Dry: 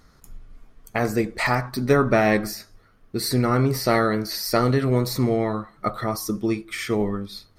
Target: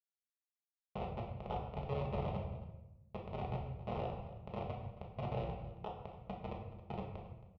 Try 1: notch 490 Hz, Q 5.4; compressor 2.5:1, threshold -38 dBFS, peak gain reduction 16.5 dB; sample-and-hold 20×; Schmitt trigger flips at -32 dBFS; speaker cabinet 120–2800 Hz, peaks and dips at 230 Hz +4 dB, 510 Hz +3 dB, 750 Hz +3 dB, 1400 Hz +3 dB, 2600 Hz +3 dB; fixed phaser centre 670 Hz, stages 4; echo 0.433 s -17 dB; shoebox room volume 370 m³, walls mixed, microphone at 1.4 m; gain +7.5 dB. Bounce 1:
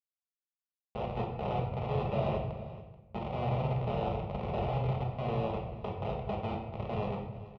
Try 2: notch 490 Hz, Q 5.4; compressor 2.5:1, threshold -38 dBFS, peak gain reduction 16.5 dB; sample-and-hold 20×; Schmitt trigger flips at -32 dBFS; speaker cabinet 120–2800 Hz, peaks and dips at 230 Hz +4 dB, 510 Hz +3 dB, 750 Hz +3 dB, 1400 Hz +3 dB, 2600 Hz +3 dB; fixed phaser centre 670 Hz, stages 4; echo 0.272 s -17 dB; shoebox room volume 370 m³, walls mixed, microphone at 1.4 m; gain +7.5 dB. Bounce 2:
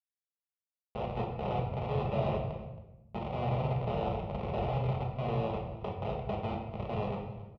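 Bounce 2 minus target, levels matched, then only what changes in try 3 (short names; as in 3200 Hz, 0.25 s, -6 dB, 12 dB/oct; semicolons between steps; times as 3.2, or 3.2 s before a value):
compressor: peak gain reduction -3.5 dB
change: compressor 2.5:1, threshold -44 dBFS, peak gain reduction 20 dB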